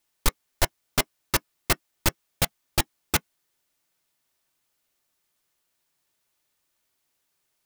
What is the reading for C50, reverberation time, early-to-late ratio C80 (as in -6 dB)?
60.0 dB, no single decay rate, 60.0 dB